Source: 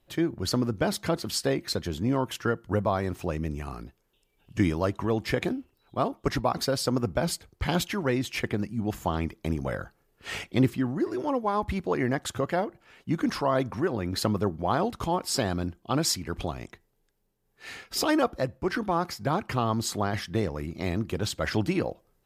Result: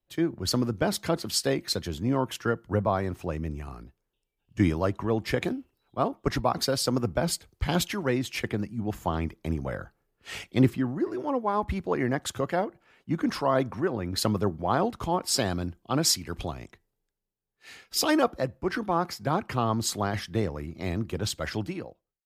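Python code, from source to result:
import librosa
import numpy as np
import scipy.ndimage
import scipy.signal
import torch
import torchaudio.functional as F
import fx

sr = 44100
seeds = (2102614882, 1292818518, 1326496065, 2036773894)

y = fx.fade_out_tail(x, sr, length_s=1.0)
y = fx.band_widen(y, sr, depth_pct=40)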